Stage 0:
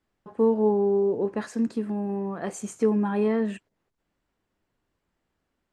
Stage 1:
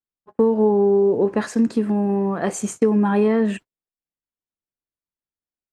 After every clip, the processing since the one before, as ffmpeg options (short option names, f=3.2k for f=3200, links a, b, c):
-af "agate=range=-33dB:threshold=-41dB:ratio=16:detection=peak,acompressor=threshold=-22dB:ratio=6,volume=9dB"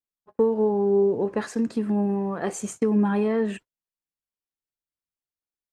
-af "aphaser=in_gain=1:out_gain=1:delay=2.7:decay=0.25:speed=1:type=triangular,volume=-5dB"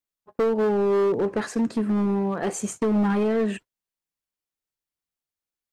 -af "asoftclip=type=hard:threshold=-21dB,volume=2.5dB"